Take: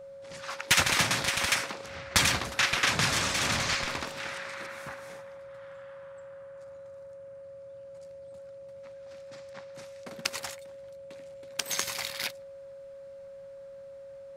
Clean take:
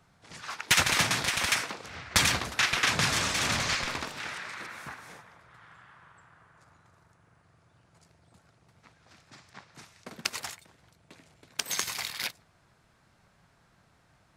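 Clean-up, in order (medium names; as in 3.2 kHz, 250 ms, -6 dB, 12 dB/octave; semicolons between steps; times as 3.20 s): band-stop 550 Hz, Q 30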